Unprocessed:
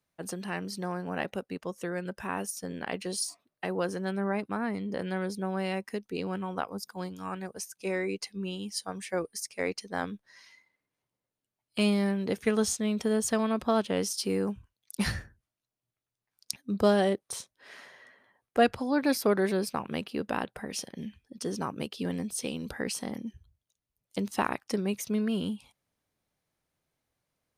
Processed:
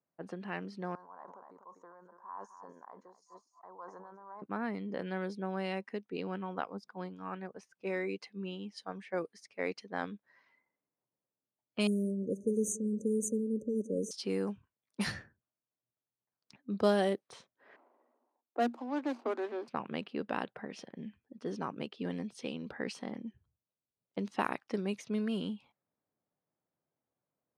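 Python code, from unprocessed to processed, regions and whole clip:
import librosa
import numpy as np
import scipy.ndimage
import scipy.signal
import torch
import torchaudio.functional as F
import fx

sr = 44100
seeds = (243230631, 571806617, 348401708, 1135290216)

y = fx.chain(x, sr, fx.double_bandpass(hz=2600.0, octaves=2.7),
    fx.echo_single(ms=249, db=-14.5),
    fx.sustainer(db_per_s=23.0), at=(0.95, 4.42))
y = fx.chain(y, sr, fx.brickwall_bandstop(low_hz=590.0, high_hz=5900.0),
    fx.echo_bbd(ms=177, stages=1024, feedback_pct=73, wet_db=-18.0), at=(11.87, 14.11))
y = fx.chain(y, sr, fx.median_filter(points=25),
    fx.cheby_ripple_highpass(hz=230.0, ripple_db=6), at=(17.76, 19.68))
y = fx.env_lowpass(y, sr, base_hz=1100.0, full_db=-23.0)
y = scipy.signal.sosfilt(scipy.signal.butter(2, 150.0, 'highpass', fs=sr, output='sos'), y)
y = y * librosa.db_to_amplitude(-4.0)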